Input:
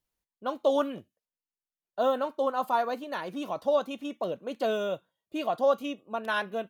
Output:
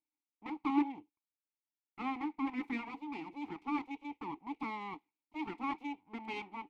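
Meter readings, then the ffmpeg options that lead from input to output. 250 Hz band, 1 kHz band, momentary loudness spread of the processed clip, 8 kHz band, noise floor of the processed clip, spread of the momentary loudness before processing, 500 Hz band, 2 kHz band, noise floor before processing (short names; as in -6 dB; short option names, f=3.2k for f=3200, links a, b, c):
-1.0 dB, -9.0 dB, 12 LU, n/a, under -85 dBFS, 10 LU, -25.0 dB, -8.0 dB, under -85 dBFS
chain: -filter_complex "[0:a]aeval=exprs='abs(val(0))':c=same,asplit=3[a][b][c];[a]bandpass=f=300:t=q:w=8,volume=0dB[d];[b]bandpass=f=870:t=q:w=8,volume=-6dB[e];[c]bandpass=f=2.24k:t=q:w=8,volume=-9dB[f];[d][e][f]amix=inputs=3:normalize=0,volume=7.5dB"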